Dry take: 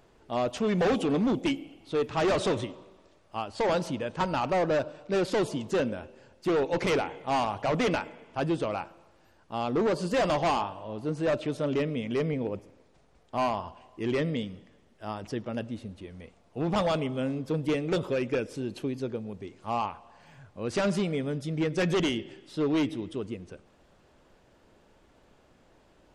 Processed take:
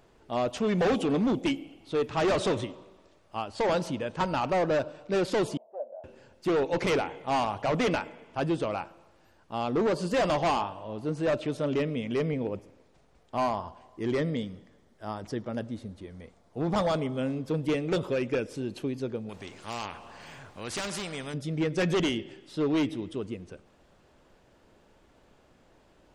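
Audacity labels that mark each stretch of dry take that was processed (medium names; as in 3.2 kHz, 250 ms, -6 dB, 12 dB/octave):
5.570000	6.040000	Butterworth band-pass 660 Hz, Q 3.8
13.400000	17.180000	peaking EQ 2.7 kHz -8.5 dB 0.31 oct
19.290000	21.340000	spectrum-flattening compressor 2:1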